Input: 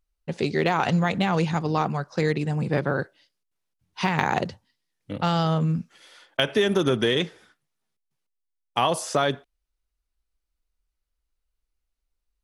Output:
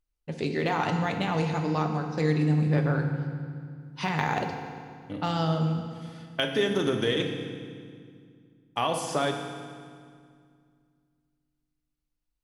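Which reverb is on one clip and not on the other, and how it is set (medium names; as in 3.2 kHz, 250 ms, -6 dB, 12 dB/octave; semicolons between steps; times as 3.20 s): FDN reverb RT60 2.1 s, low-frequency decay 1.45×, high-frequency decay 0.85×, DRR 3.5 dB; trim -5.5 dB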